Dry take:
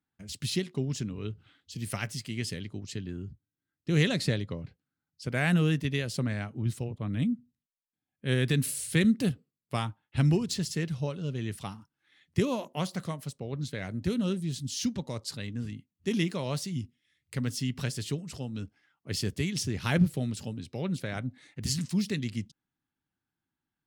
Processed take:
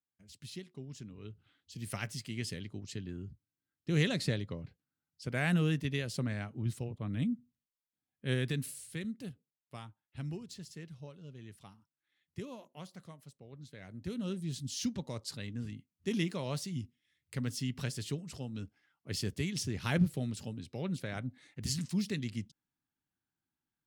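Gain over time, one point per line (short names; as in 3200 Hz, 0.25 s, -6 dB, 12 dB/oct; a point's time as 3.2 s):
0.84 s -15 dB
2 s -4.5 dB
8.3 s -4.5 dB
9.02 s -16 dB
13.64 s -16 dB
14.52 s -4.5 dB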